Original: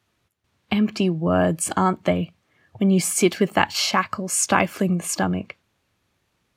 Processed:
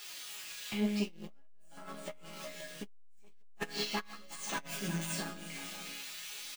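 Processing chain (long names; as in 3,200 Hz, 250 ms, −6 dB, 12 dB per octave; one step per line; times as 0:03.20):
spike at every zero crossing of −19.5 dBFS
meter weighting curve D
de-essing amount 55%
0:01.33–0:01.89: low-shelf EQ 300 Hz −3.5 dB
0:04.58–0:05.06: transient designer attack −9 dB, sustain +7 dB
leveller curve on the samples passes 3
resonators tuned to a chord C#3 minor, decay 0.6 s
flanger 0.45 Hz, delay 2.2 ms, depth 8.4 ms, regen +48%
multi-tap delay 187/362/524 ms −14.5/−10/−12.5 dB
saturating transformer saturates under 320 Hz
level +1.5 dB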